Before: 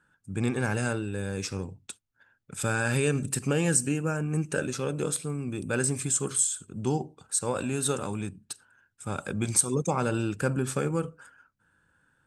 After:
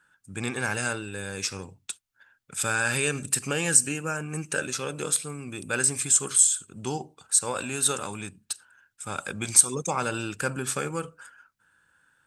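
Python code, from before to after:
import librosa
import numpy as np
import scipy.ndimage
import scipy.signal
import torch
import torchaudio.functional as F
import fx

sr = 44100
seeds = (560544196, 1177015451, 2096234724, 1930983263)

y = fx.tilt_shelf(x, sr, db=-6.5, hz=730.0)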